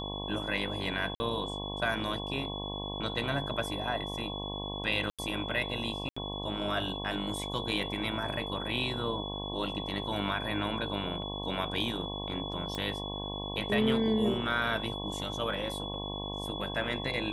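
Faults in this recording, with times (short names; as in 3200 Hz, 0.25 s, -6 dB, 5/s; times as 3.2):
buzz 50 Hz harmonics 22 -39 dBFS
tone 3400 Hz -39 dBFS
1.15–1.2 gap 50 ms
5.1–5.19 gap 86 ms
6.09–6.17 gap 75 ms
12.75 pop -22 dBFS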